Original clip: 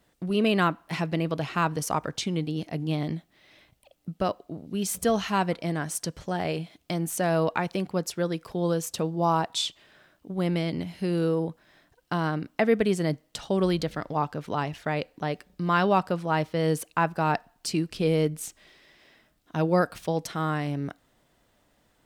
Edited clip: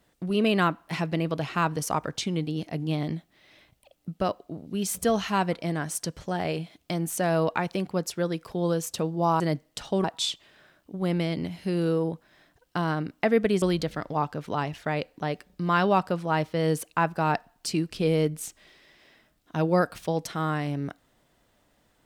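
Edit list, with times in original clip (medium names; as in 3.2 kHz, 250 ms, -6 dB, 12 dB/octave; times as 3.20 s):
12.98–13.62 s: move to 9.40 s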